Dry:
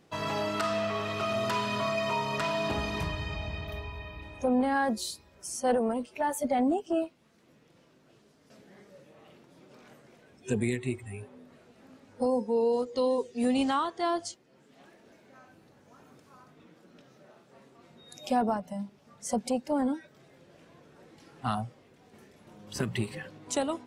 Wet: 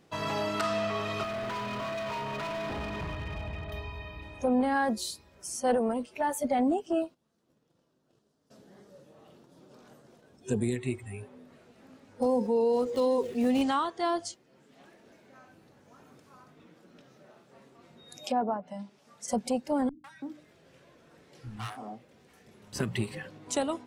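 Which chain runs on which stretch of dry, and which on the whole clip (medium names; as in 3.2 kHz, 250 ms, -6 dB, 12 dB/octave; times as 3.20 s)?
1.23–3.72 s: low-pass 2.5 kHz + overload inside the chain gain 32.5 dB
7.02–10.76 s: gate -60 dBFS, range -11 dB + peaking EQ 2.2 kHz -10 dB 0.71 oct
12.22–13.62 s: median filter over 9 samples + level flattener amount 50%
18.24–19.28 s: high-pass 300 Hz 6 dB/octave + treble shelf 4.8 kHz +7 dB + low-pass that closes with the level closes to 1.2 kHz, closed at -27.5 dBFS
19.89–22.73 s: hum notches 50/100/150/200/250/300/350/400/450 Hz + hard clipper -31.5 dBFS + three bands offset in time lows, highs, mids 150/330 ms, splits 210/820 Hz
whole clip: none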